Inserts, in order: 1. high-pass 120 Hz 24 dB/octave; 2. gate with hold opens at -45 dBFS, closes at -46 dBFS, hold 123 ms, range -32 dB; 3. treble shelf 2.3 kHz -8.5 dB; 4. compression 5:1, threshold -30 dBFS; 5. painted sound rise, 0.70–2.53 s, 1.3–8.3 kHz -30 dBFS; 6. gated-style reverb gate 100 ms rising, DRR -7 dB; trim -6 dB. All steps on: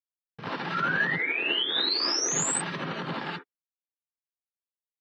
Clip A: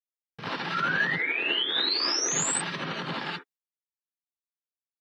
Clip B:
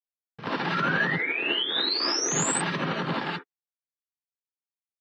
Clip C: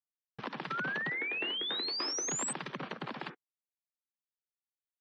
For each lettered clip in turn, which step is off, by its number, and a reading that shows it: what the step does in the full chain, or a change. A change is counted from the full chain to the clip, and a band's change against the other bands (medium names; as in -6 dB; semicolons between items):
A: 3, momentary loudness spread change -1 LU; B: 4, mean gain reduction 3.0 dB; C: 6, momentary loudness spread change -2 LU